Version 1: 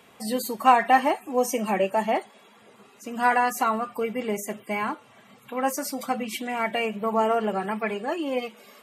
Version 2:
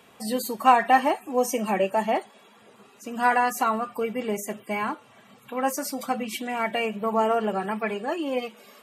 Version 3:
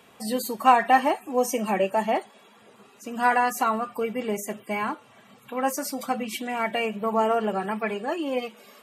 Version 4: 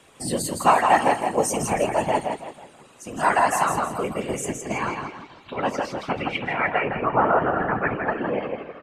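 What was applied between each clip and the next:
notch filter 2,100 Hz, Q 19
no processing that can be heard
repeating echo 163 ms, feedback 37%, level −5 dB; low-pass filter sweep 8,900 Hz → 1,600 Hz, 0:04.35–0:06.92; random phases in short frames

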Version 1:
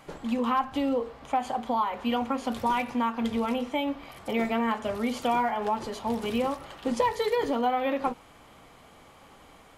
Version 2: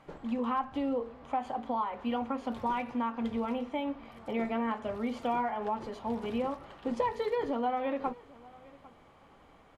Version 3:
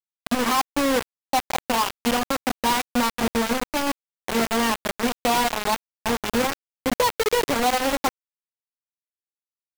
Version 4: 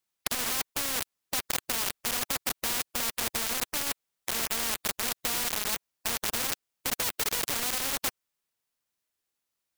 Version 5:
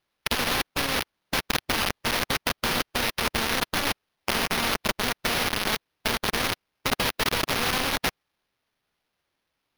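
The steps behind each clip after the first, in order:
low-pass filter 1,900 Hz 6 dB per octave; single-tap delay 800 ms −22.5 dB; level −4.5 dB
bit reduction 5 bits; level +8 dB
every bin compressed towards the loudest bin 4 to 1
low-shelf EQ 370 Hz +6 dB; sample-rate reduction 7,700 Hz, jitter 0%; level +4 dB

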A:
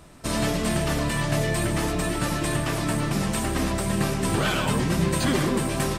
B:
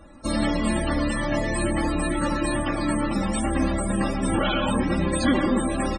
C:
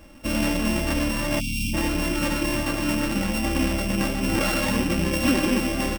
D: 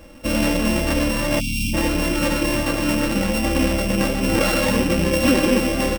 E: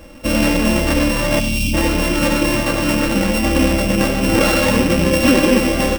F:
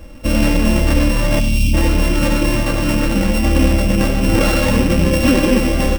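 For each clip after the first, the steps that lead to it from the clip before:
comb filter 3.6 ms, depth 80%; spectral peaks only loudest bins 64
samples sorted by size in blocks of 16 samples; time-frequency box erased 0:01.40–0:01.73, 290–2,200 Hz
hollow resonant body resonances 500/4,000 Hz, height 9 dB; level +3.5 dB
echo with a time of its own for lows and highs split 340 Hz, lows 793 ms, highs 95 ms, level −13 dB; level +4 dB
low-shelf EQ 130 Hz +11 dB; level −2.5 dB

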